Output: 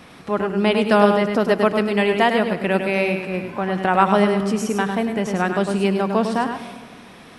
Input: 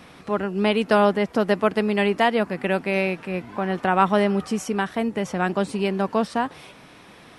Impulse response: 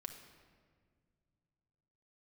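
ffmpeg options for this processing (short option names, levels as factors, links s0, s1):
-filter_complex "[0:a]asplit=2[s0][s1];[s1]highshelf=f=10000:g=8.5[s2];[1:a]atrim=start_sample=2205,adelay=102[s3];[s2][s3]afir=irnorm=-1:irlink=0,volume=0.75[s4];[s0][s4]amix=inputs=2:normalize=0,volume=1.26"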